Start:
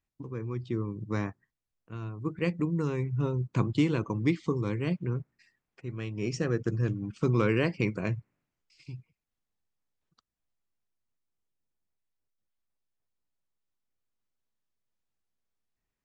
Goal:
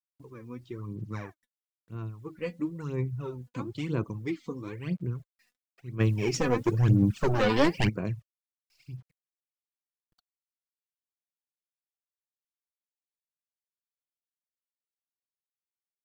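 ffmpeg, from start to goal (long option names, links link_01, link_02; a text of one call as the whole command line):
ffmpeg -i in.wav -filter_complex "[0:a]acrusher=bits=10:mix=0:aa=0.000001,asplit=3[link_01][link_02][link_03];[link_01]afade=type=out:start_time=5.99:duration=0.02[link_04];[link_02]aeval=exprs='0.224*sin(PI/2*2.82*val(0)/0.224)':channel_layout=same,afade=type=in:start_time=5.99:duration=0.02,afade=type=out:start_time=7.88:duration=0.02[link_05];[link_03]afade=type=in:start_time=7.88:duration=0.02[link_06];[link_04][link_05][link_06]amix=inputs=3:normalize=0,aphaser=in_gain=1:out_gain=1:delay=4.1:decay=0.66:speed=1:type=sinusoidal,volume=-8dB" out.wav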